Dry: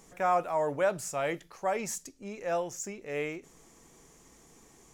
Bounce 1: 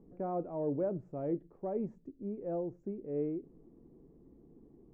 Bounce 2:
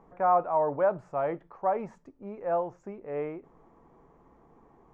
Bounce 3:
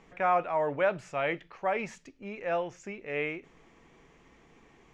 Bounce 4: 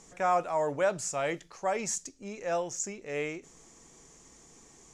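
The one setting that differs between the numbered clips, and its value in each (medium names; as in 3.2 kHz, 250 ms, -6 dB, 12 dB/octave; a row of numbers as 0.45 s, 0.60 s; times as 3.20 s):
resonant low-pass, frequency: 330 Hz, 1 kHz, 2.6 kHz, 7.2 kHz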